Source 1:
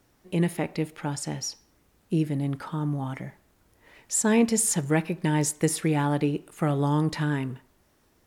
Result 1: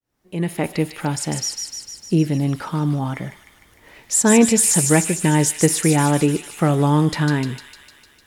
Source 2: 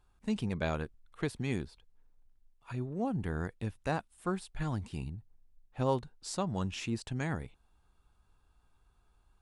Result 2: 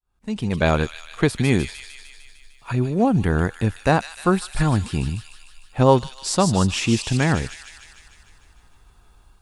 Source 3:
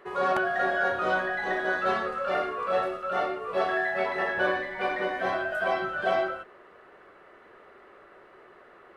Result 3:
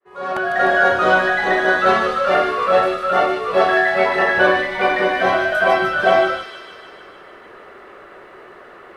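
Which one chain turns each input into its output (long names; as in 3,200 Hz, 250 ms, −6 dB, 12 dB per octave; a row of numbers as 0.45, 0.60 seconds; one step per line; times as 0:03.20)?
fade in at the beginning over 0.70 s
automatic gain control gain up to 3.5 dB
on a send: delay with a high-pass on its return 151 ms, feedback 66%, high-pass 3,000 Hz, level −3.5 dB
on the sum: normalise the peak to −2 dBFS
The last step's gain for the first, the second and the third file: +4.0, +12.0, +8.0 decibels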